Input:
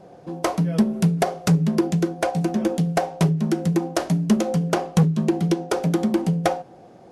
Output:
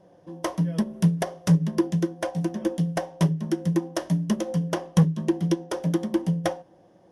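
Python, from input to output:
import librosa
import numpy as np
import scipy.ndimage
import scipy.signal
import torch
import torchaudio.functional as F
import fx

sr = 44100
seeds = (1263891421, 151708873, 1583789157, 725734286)

y = fx.ripple_eq(x, sr, per_octave=1.2, db=7)
y = fx.upward_expand(y, sr, threshold_db=-25.0, expansion=1.5)
y = y * 10.0 ** (-2.5 / 20.0)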